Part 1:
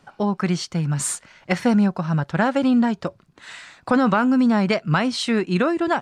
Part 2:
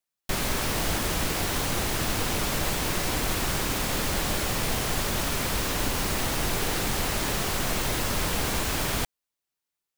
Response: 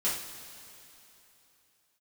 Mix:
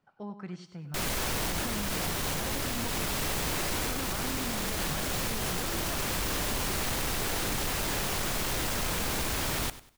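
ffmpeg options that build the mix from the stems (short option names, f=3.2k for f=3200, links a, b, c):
-filter_complex "[0:a]highshelf=f=5.1k:g=-11,volume=-19.5dB,asplit=3[a][b][c];[b]volume=-23.5dB[d];[c]volume=-10.5dB[e];[1:a]aeval=exprs='0.0631*(abs(mod(val(0)/0.0631+3,4)-2)-1)':c=same,adelay=650,volume=0dB,asplit=2[f][g];[g]volume=-17dB[h];[2:a]atrim=start_sample=2205[i];[d][i]afir=irnorm=-1:irlink=0[j];[e][h]amix=inputs=2:normalize=0,aecho=0:1:97|194|291|388:1|0.29|0.0841|0.0244[k];[a][f][j][k]amix=inputs=4:normalize=0,alimiter=level_in=0.5dB:limit=-24dB:level=0:latency=1,volume=-0.5dB"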